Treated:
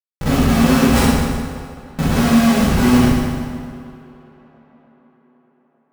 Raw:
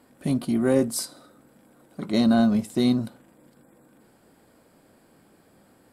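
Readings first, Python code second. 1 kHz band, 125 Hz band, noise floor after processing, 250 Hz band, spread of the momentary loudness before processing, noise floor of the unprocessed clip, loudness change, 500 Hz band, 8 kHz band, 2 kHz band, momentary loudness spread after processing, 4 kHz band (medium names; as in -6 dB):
+14.5 dB, +14.0 dB, -64 dBFS, +8.5 dB, 15 LU, -59 dBFS, +8.0 dB, +5.5 dB, +8.5 dB, +15.5 dB, 16 LU, +10.5 dB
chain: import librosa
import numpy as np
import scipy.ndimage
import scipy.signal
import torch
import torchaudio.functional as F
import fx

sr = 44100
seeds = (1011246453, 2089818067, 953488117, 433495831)

p1 = fx.bin_compress(x, sr, power=0.6)
p2 = fx.high_shelf(p1, sr, hz=10000.0, db=-4.0)
p3 = fx.level_steps(p2, sr, step_db=18)
p4 = p2 + (p3 * librosa.db_to_amplitude(2.0))
p5 = fx.schmitt(p4, sr, flips_db=-20.5)
p6 = p5 + fx.echo_tape(p5, sr, ms=300, feedback_pct=77, wet_db=-18, lp_hz=3600.0, drive_db=17.0, wow_cents=6, dry=0)
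p7 = fx.rev_fdn(p6, sr, rt60_s=1.8, lf_ratio=1.0, hf_ratio=0.8, size_ms=36.0, drr_db=-8.0)
y = p7 * librosa.db_to_amplitude(-2.5)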